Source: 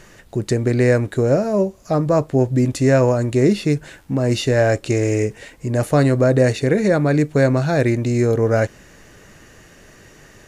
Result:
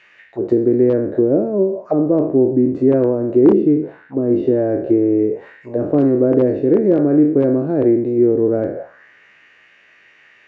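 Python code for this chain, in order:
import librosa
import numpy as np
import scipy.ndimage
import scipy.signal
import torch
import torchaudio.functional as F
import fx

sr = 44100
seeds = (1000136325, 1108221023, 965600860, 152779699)

y = fx.spec_trails(x, sr, decay_s=0.64)
y = fx.high_shelf(y, sr, hz=4600.0, db=-6.5, at=(3.53, 5.18))
y = (np.mod(10.0 ** (5.0 / 20.0) * y + 1.0, 2.0) - 1.0) / 10.0 ** (5.0 / 20.0)
y = fx.auto_wah(y, sr, base_hz=330.0, top_hz=2600.0, q=3.0, full_db=-14.5, direction='down')
y = fx.spacing_loss(y, sr, db_at_10k=21)
y = y * librosa.db_to_amplitude(8.5)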